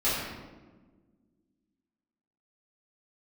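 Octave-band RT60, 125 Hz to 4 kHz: 2.0, 2.4, 1.6, 1.2, 0.95, 0.75 s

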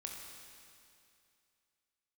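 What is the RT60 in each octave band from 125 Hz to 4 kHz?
2.5, 2.5, 2.5, 2.5, 2.5, 2.5 s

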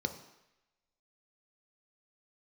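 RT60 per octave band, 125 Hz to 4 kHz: 0.75, 0.80, 0.85, 0.95, 1.1, 0.95 s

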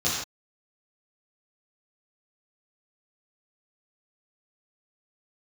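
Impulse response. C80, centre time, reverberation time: 3.0 dB, 59 ms, not exponential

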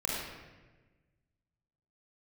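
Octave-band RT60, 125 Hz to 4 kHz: 2.0, 1.7, 1.4, 1.1, 1.2, 0.90 s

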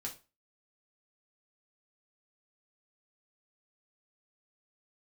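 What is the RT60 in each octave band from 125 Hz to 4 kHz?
0.30, 0.30, 0.30, 0.30, 0.30, 0.25 s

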